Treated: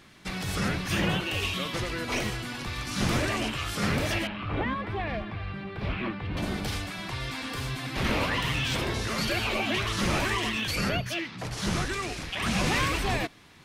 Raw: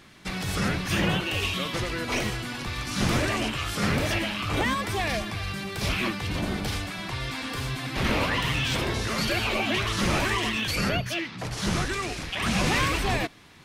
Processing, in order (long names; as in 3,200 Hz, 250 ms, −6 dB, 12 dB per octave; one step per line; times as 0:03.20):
0:04.27–0:06.37: high-frequency loss of the air 430 metres
level −2 dB